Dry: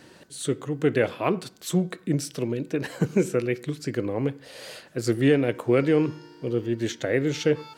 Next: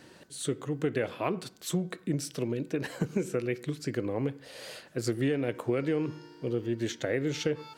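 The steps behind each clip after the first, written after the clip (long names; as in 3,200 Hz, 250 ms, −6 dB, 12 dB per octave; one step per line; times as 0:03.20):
downward compressor 5 to 1, threshold −22 dBFS, peak gain reduction 7.5 dB
level −3 dB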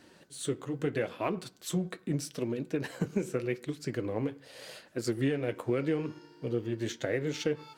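flanger 0.81 Hz, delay 2.8 ms, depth 8.4 ms, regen −53%
in parallel at −8 dB: dead-zone distortion −48 dBFS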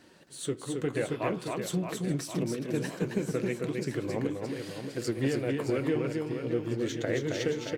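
reverse bouncing-ball delay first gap 270 ms, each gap 1.3×, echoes 5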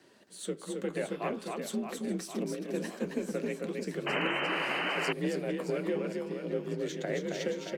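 frequency shifter +45 Hz
sound drawn into the spectrogram noise, 0:04.06–0:05.13, 270–3,100 Hz −29 dBFS
level −3.5 dB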